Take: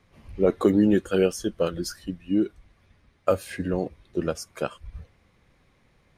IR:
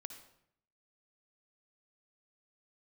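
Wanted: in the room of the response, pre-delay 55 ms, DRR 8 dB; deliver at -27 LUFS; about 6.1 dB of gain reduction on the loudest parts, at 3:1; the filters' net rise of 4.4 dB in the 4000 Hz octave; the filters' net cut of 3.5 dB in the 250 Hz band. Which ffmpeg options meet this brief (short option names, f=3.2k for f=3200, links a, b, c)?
-filter_complex "[0:a]equalizer=f=250:t=o:g=-5,equalizer=f=4k:t=o:g=6.5,acompressor=threshold=-25dB:ratio=3,asplit=2[a][b];[1:a]atrim=start_sample=2205,adelay=55[c];[b][c]afir=irnorm=-1:irlink=0,volume=-3.5dB[d];[a][d]amix=inputs=2:normalize=0,volume=4dB"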